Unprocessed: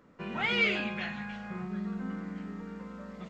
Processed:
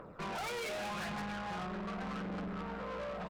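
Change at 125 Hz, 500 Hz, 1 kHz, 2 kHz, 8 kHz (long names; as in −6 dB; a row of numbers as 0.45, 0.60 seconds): −3.5 dB, −1.0 dB, +1.5 dB, −10.5 dB, can't be measured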